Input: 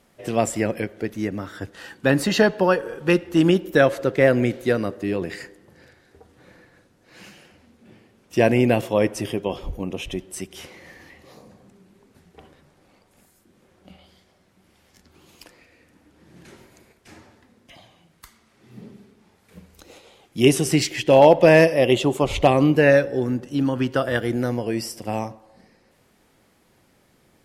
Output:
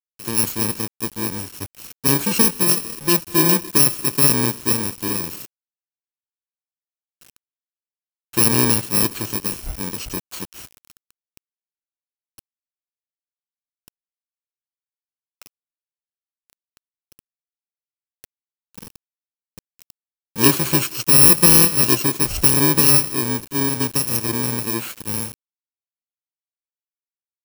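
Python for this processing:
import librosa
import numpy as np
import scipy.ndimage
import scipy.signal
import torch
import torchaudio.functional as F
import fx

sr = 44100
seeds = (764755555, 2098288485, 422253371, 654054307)

y = fx.bit_reversed(x, sr, seeds[0], block=64)
y = fx.quant_dither(y, sr, seeds[1], bits=6, dither='none')
y = F.gain(torch.from_numpy(y), 1.0).numpy()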